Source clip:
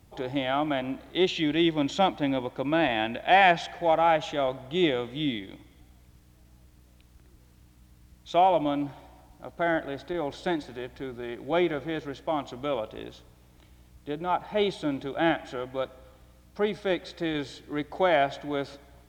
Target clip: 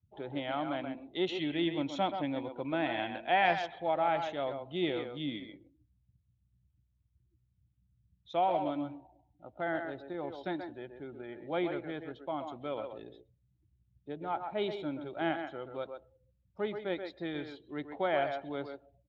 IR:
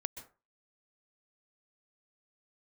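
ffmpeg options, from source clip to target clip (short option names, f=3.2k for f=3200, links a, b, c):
-filter_complex "[0:a]asplit=2[a][b];[b]adelay=130,highpass=300,lowpass=3.4k,asoftclip=type=hard:threshold=-16dB,volume=-6dB[c];[a][c]amix=inputs=2:normalize=0,afftdn=nr=36:nf=-45,volume=-8.5dB" -ar 32000 -c:a libspeex -b:a 36k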